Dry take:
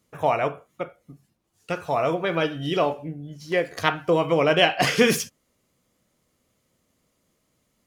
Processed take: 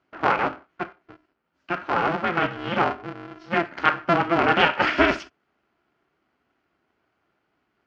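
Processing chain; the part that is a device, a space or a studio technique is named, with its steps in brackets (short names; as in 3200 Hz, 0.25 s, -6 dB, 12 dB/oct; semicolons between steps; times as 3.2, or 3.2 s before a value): ring modulator pedal into a guitar cabinet (polarity switched at an audio rate 170 Hz; speaker cabinet 100–3800 Hz, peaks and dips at 100 Hz -7 dB, 480 Hz -5 dB, 1400 Hz +8 dB, 3700 Hz -8 dB)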